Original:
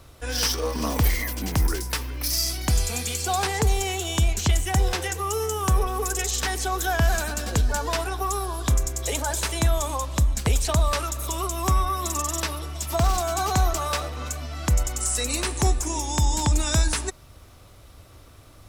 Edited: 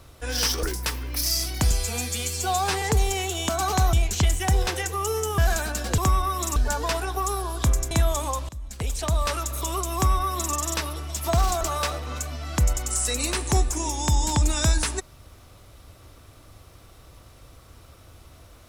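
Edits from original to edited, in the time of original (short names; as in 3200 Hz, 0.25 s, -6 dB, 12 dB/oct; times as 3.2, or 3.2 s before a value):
0.63–1.7 cut
2.78–3.52 stretch 1.5×
5.64–7 cut
8.95–9.57 cut
10.15–11.06 fade in linear, from -23 dB
11.61–12.19 copy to 7.6
13.27–13.71 move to 4.19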